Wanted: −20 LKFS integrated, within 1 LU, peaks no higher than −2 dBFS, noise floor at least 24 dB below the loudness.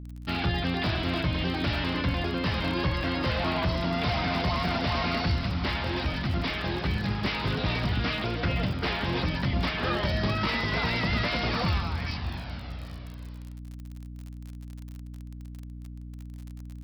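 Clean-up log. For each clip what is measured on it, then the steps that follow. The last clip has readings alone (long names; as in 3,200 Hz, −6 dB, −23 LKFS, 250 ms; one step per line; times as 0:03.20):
crackle rate 43 per second; mains hum 60 Hz; hum harmonics up to 300 Hz; level of the hum −38 dBFS; integrated loudness −28.0 LKFS; sample peak −16.0 dBFS; target loudness −20.0 LKFS
→ click removal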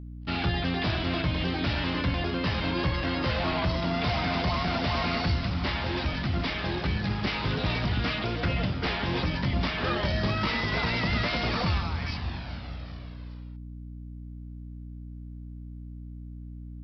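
crackle rate 0 per second; mains hum 60 Hz; hum harmonics up to 300 Hz; level of the hum −38 dBFS
→ mains-hum notches 60/120/180/240/300 Hz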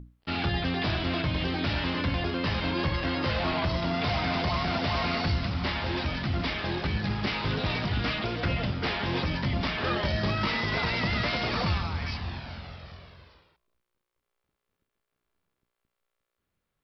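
mains hum none found; integrated loudness −28.5 LKFS; sample peak −17.0 dBFS; target loudness −20.0 LKFS
→ level +8.5 dB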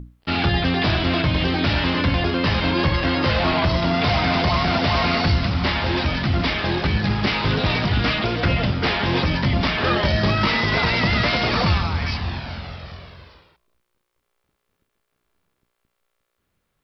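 integrated loudness −20.0 LKFS; sample peak −8.5 dBFS; background noise floor −75 dBFS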